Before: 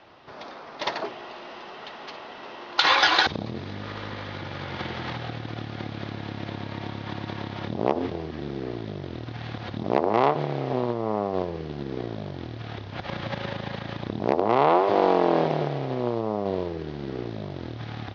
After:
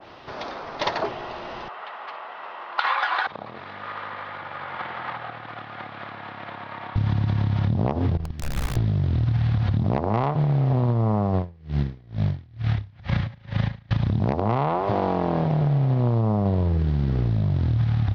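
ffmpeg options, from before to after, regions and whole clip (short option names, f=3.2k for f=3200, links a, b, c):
-filter_complex "[0:a]asettb=1/sr,asplit=3[a][b][c];[a]atrim=end=1.684[d];[b]atrim=start=1.68:end=6.96,asetpts=PTS-STARTPTS,afade=t=in:d=0.004:c=qsin,afade=t=out:st=5.276:d=0.004:c=qsin,highpass=720,lowpass=2.3k,equalizer=f=1.2k:t=o:w=0.24:g=3.5[e];[c]atrim=start=6.956[f];[d][e]acrossfade=d=0.004:c1=hsin:c2=qsin[g];[g][f]acrossfade=d=0.004:c1=qsin:c2=hsin,asettb=1/sr,asplit=3[h][i][j];[h]atrim=end=8.174[k];[i]atrim=start=8.17:end=8.76,asetpts=PTS-STARTPTS,afade=t=in:d=0.004:c=qsin,afade=t=out:st=0.586:d=0.004:c=qsin,agate=range=-19dB:threshold=-32dB:ratio=16:release=100:detection=peak,bandreject=f=560:w=14,aeval=exprs='(mod(37.6*val(0)+1,2)-1)/37.6':c=same[l];[j]atrim=start=8.756[m];[k][l]acrossfade=d=0.004:c1=hsin:c2=qsin[n];[n][m]acrossfade=d=0.004:c1=qsin:c2=hsin,asettb=1/sr,asplit=3[o][p][q];[o]atrim=end=11.354[r];[p]atrim=start=11.35:end=13.91,asetpts=PTS-STARTPTS,afade=t=in:d=0.004:c=qsin,afade=t=out:st=2.556:d=0.004:c=qsin,equalizer=f=2k:t=o:w=0.55:g=4.5,aeval=exprs='val(0)*pow(10,-34*(0.5-0.5*cos(2*PI*2.2*n/s))/20)':c=same[s];[q]atrim=start=13.906[t];[r][s]acrossfade=d=0.004:c1=hsin:c2=qsin[u];[u][t]acrossfade=d=0.004:c1=qsin:c2=hsin,asubboost=boost=11.5:cutoff=110,acompressor=threshold=-26dB:ratio=6,adynamicequalizer=threshold=0.00398:dfrequency=1700:dqfactor=0.7:tfrequency=1700:tqfactor=0.7:attack=5:release=100:ratio=0.375:range=3.5:mode=cutabove:tftype=highshelf,volume=7.5dB"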